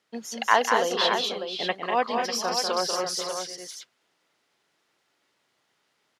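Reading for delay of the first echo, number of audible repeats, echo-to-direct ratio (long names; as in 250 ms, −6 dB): 194 ms, 4, −1.0 dB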